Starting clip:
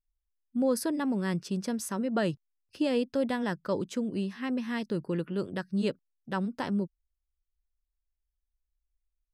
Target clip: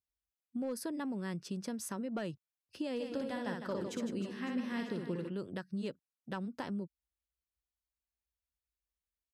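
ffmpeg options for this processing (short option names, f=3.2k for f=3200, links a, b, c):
-filter_complex "[0:a]highpass=f=60:w=0.5412,highpass=f=60:w=1.3066,volume=19.5dB,asoftclip=hard,volume=-19.5dB,acompressor=threshold=-34dB:ratio=3,asplit=3[a][b][c];[a]afade=t=out:st=2.99:d=0.02[d];[b]aecho=1:1:60|156|309.6|555.4|948.6:0.631|0.398|0.251|0.158|0.1,afade=t=in:st=2.99:d=0.02,afade=t=out:st=5.28:d=0.02[e];[c]afade=t=in:st=5.28:d=0.02[f];[d][e][f]amix=inputs=3:normalize=0,volume=-3dB"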